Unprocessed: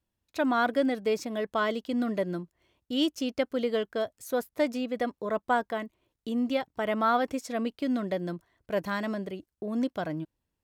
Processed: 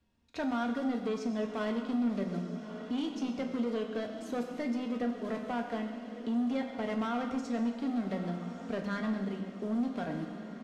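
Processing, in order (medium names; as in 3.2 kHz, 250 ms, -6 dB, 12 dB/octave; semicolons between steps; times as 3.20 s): block-companded coder 5-bit; low-pass 5.5 kHz 12 dB/octave; peaking EQ 200 Hz +5 dB 1.3 oct; comb 4.3 ms, depth 38%; peak limiter -18 dBFS, peak gain reduction 6.5 dB; saturation -24.5 dBFS, distortion -13 dB; echo that smears into a reverb 1235 ms, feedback 54%, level -14.5 dB; reverberation RT60 1.4 s, pre-delay 6 ms, DRR 3 dB; three bands compressed up and down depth 40%; trim -6 dB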